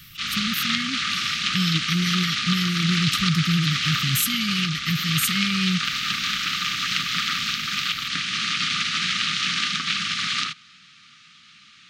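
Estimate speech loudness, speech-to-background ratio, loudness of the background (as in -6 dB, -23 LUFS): -25.5 LUFS, -2.5 dB, -23.0 LUFS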